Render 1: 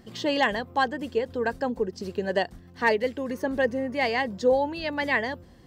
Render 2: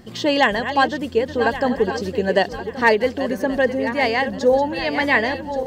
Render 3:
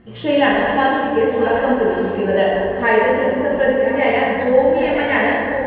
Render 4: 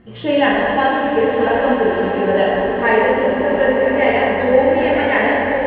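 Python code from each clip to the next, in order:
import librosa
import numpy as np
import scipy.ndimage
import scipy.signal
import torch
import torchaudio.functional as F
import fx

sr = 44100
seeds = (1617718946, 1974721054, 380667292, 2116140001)

y1 = fx.reverse_delay_fb(x, sr, ms=563, feedback_pct=56, wet_db=-10.0)
y1 = fx.rider(y1, sr, range_db=10, speed_s=2.0)
y1 = y1 * librosa.db_to_amplitude(6.0)
y2 = scipy.signal.sosfilt(scipy.signal.butter(8, 3200.0, 'lowpass', fs=sr, output='sos'), y1)
y2 = fx.rev_plate(y2, sr, seeds[0], rt60_s=2.2, hf_ratio=0.5, predelay_ms=0, drr_db=-6.5)
y2 = y2 * librosa.db_to_amplitude(-4.5)
y3 = fx.echo_swell(y2, sr, ms=104, loudest=8, wet_db=-17.0)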